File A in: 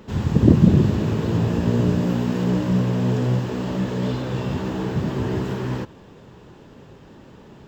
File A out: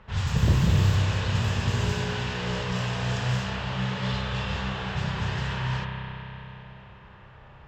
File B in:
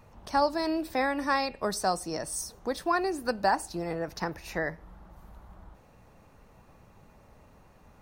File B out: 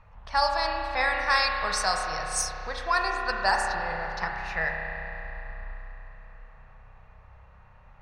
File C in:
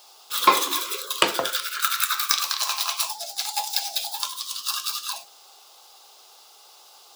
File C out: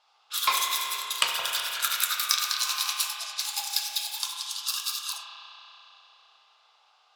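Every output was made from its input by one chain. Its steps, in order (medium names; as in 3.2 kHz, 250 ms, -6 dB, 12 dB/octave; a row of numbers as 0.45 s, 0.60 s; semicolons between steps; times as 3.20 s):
amplifier tone stack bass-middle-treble 10-0-10; level-controlled noise filter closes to 1.6 kHz, open at -28 dBFS; spring tank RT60 3.6 s, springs 31 ms, chirp 80 ms, DRR 0.5 dB; normalise loudness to -27 LUFS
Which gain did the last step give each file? +7.5 dB, +11.0 dB, -1.0 dB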